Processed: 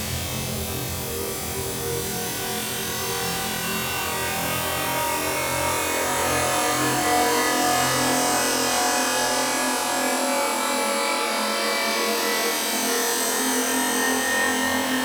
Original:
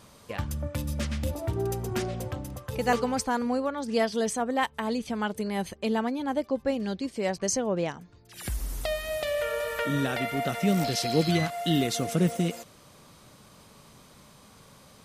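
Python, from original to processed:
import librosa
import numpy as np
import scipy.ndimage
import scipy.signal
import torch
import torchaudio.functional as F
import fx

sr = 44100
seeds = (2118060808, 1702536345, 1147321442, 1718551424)

p1 = fx.tilt_shelf(x, sr, db=-6.5, hz=1400.0)
p2 = fx.echo_pitch(p1, sr, ms=165, semitones=4, count=3, db_per_echo=-3.0)
p3 = p2 + fx.room_flutter(p2, sr, wall_m=4.0, rt60_s=1.2, dry=0)
y = fx.paulstretch(p3, sr, seeds[0], factor=4.3, window_s=1.0, from_s=1.27)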